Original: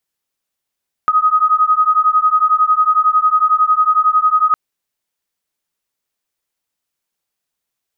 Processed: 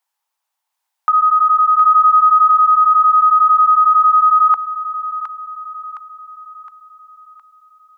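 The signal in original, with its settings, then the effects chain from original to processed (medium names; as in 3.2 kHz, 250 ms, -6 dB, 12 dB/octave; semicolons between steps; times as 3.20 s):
beating tones 1.25 kHz, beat 11 Hz, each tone -13 dBFS 3.46 s
peak limiter -13.5 dBFS; resonant high-pass 880 Hz, resonance Q 4.9; on a send: feedback echo behind a high-pass 714 ms, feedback 48%, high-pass 1.5 kHz, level -3 dB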